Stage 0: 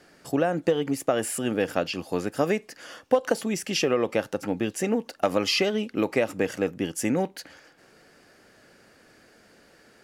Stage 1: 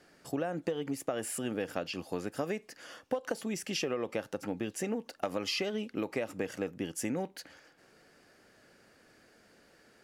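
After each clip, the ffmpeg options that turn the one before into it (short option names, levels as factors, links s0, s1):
-af "acompressor=threshold=0.0562:ratio=2.5,volume=0.501"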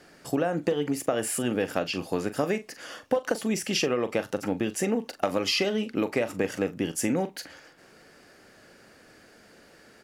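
-filter_complex "[0:a]asplit=2[s0][s1];[s1]adelay=41,volume=0.237[s2];[s0][s2]amix=inputs=2:normalize=0,volume=2.37"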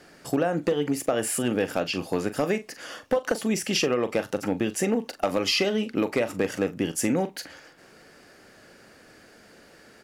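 -af "volume=6.31,asoftclip=hard,volume=0.158,volume=1.26"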